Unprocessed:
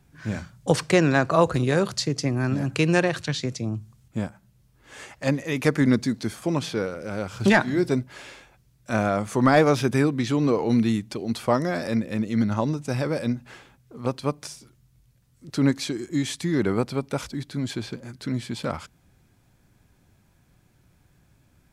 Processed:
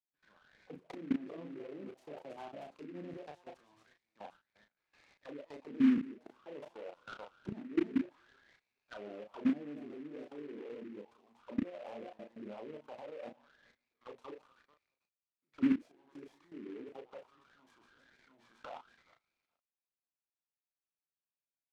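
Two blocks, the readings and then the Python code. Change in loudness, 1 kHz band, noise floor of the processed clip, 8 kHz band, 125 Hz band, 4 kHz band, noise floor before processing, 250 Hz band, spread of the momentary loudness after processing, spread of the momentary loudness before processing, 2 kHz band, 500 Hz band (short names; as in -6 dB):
-15.5 dB, -23.5 dB, under -85 dBFS, under -35 dB, -30.5 dB, -26.0 dB, -62 dBFS, -13.5 dB, 20 LU, 13 LU, -25.0 dB, -21.5 dB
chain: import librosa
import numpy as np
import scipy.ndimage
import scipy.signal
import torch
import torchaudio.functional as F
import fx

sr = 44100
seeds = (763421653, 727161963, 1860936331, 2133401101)

p1 = fx.reverse_delay(x, sr, ms=220, wet_db=-12)
p2 = p1 + 10.0 ** (-16.5 / 20.0) * np.pad(p1, (int(425 * sr / 1000.0), 0))[:len(p1)]
p3 = fx.dynamic_eq(p2, sr, hz=1600.0, q=1.6, threshold_db=-41.0, ratio=4.0, max_db=-3)
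p4 = fx.hum_notches(p3, sr, base_hz=60, count=4)
p5 = p4 + fx.echo_stepped(p4, sr, ms=316, hz=3400.0, octaves=0.7, feedback_pct=70, wet_db=-6.5, dry=0)
p6 = fx.env_lowpass(p5, sr, base_hz=830.0, full_db=-21.0)
p7 = scipy.signal.sosfilt(scipy.signal.butter(2, 160.0, 'highpass', fs=sr, output='sos'), p6)
p8 = fx.rider(p7, sr, range_db=3, speed_s=2.0)
p9 = p7 + (p8 * 10.0 ** (-2.0 / 20.0))
p10 = fx.auto_wah(p9, sr, base_hz=250.0, top_hz=2700.0, q=7.1, full_db=-12.5, direction='down')
p11 = fx.level_steps(p10, sr, step_db=21)
p12 = fx.doubler(p11, sr, ms=34.0, db=-5.0)
p13 = fx.noise_mod_delay(p12, sr, seeds[0], noise_hz=1700.0, depth_ms=0.048)
y = p13 * 10.0 ** (-5.0 / 20.0)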